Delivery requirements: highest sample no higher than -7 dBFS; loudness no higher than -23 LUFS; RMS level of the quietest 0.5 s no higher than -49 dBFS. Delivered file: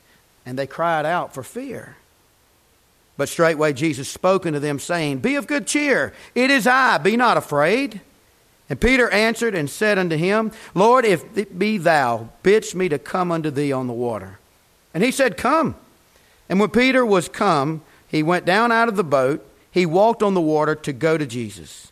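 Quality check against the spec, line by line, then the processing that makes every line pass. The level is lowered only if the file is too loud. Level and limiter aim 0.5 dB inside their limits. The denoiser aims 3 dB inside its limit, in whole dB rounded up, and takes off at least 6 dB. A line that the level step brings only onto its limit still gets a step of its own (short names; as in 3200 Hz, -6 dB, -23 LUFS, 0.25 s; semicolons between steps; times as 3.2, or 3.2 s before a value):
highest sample -5.0 dBFS: fail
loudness -19.0 LUFS: fail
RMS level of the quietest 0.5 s -58 dBFS: OK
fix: gain -4.5 dB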